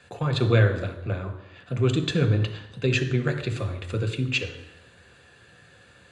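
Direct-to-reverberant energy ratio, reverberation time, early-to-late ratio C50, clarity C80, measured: 5.0 dB, 0.85 s, 10.0 dB, 12.0 dB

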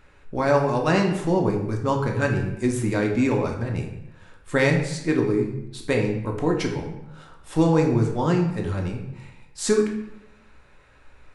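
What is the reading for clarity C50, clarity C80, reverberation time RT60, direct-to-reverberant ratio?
6.0 dB, 9.0 dB, 0.80 s, 1.0 dB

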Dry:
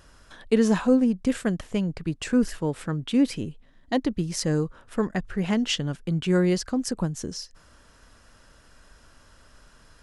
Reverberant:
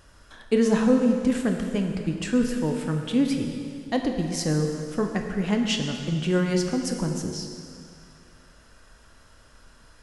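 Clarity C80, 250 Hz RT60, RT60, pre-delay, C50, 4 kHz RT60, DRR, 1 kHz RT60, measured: 5.5 dB, 2.4 s, 2.4 s, 5 ms, 4.5 dB, 2.2 s, 3.0 dB, 2.5 s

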